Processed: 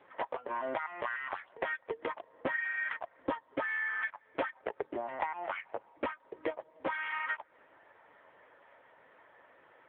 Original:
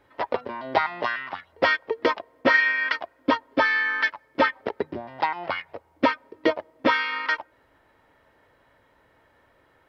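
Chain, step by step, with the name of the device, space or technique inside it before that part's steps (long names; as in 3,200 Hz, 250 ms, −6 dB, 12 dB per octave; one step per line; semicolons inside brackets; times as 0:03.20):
voicemail (band-pass filter 380–3,000 Hz; downward compressor 12 to 1, threshold −35 dBFS, peak gain reduction 20 dB; level +5 dB; AMR narrowband 6.7 kbit/s 8,000 Hz)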